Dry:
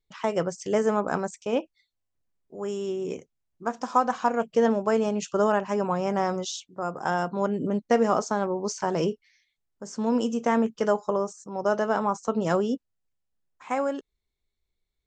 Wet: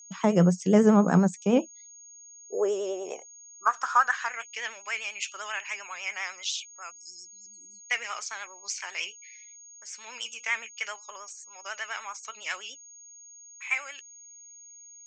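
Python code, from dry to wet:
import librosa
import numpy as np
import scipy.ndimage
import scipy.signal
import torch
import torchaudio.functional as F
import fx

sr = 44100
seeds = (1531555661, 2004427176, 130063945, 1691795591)

y = fx.spec_repair(x, sr, seeds[0], start_s=6.94, length_s=0.86, low_hz=370.0, high_hz=4100.0, source='after')
y = fx.vibrato(y, sr, rate_hz=10.0, depth_cents=69.0)
y = fx.filter_sweep_highpass(y, sr, from_hz=180.0, to_hz=2300.0, start_s=1.5, end_s=4.46, q=5.8)
y = y + 10.0 ** (-47.0 / 20.0) * np.sin(2.0 * np.pi * 6600.0 * np.arange(len(y)) / sr)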